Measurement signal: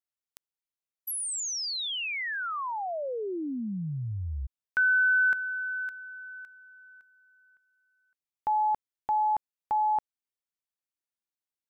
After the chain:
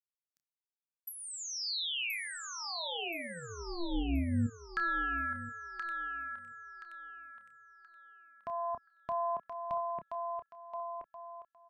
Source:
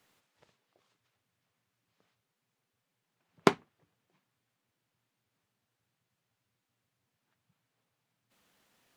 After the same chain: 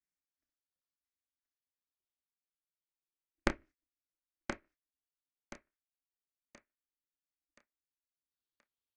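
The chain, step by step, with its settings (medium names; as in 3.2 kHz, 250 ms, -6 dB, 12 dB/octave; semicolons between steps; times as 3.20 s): drifting ripple filter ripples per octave 0.54, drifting -0.28 Hz, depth 11 dB; gate -48 dBFS, range -25 dB; bass shelf 85 Hz +7 dB; low-pass that closes with the level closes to 1.7 kHz, closed at -23 dBFS; peaking EQ 600 Hz -12 dB 2.5 oct; doubling 29 ms -10 dB; on a send: thinning echo 1026 ms, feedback 35%, high-pass 260 Hz, level -4 dB; on the sum: ring modulator 170 Hz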